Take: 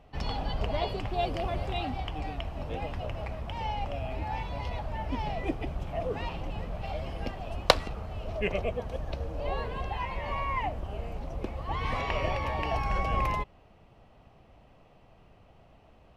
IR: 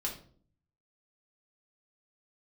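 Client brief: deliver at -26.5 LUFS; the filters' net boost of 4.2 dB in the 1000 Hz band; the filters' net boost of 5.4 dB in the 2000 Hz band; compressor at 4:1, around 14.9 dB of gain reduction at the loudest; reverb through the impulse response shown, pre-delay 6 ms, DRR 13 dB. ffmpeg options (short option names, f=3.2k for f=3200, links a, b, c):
-filter_complex "[0:a]equalizer=f=1k:t=o:g=4,equalizer=f=2k:t=o:g=5.5,acompressor=threshold=-34dB:ratio=4,asplit=2[a][b];[1:a]atrim=start_sample=2205,adelay=6[c];[b][c]afir=irnorm=-1:irlink=0,volume=-15dB[d];[a][d]amix=inputs=2:normalize=0,volume=11.5dB"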